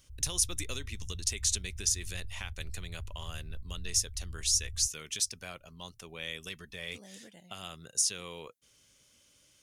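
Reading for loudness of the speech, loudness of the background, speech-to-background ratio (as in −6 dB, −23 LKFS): −32.5 LKFS, −46.0 LKFS, 13.5 dB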